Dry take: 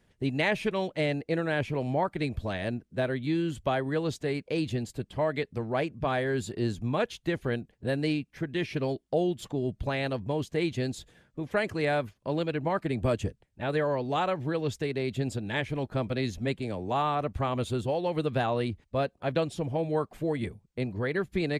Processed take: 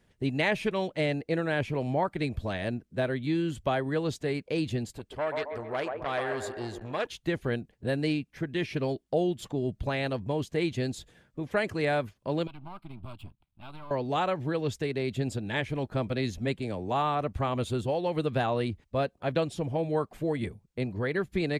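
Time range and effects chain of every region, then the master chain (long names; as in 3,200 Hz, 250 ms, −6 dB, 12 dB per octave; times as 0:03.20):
0:04.98–0:07.07: parametric band 170 Hz −10 dB 1.7 octaves + delay with a band-pass on its return 135 ms, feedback 49%, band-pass 750 Hz, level −4 dB + saturating transformer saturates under 1,200 Hz
0:12.47–0:13.91: gain on one half-wave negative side −12 dB + downward compressor 1.5 to 1, threshold −49 dBFS + phaser with its sweep stopped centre 1,800 Hz, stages 6
whole clip: no processing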